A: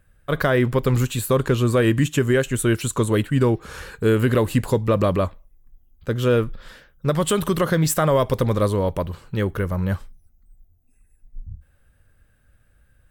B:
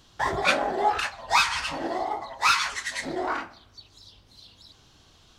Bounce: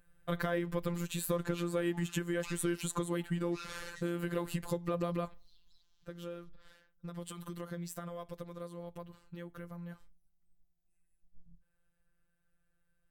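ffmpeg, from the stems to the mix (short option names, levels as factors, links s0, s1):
-filter_complex "[0:a]acompressor=threshold=0.0708:ratio=6,volume=0.631,afade=t=out:st=5.34:d=0.4:silence=0.316228,asplit=2[s0][s1];[1:a]highpass=f=1500:p=1,adelay=1100,volume=0.141[s2];[s1]apad=whole_len=286021[s3];[s2][s3]sidechaincompress=threshold=0.0158:ratio=8:attack=46:release=277[s4];[s0][s4]amix=inputs=2:normalize=0,afftfilt=real='hypot(re,im)*cos(PI*b)':imag='0':win_size=1024:overlap=0.75"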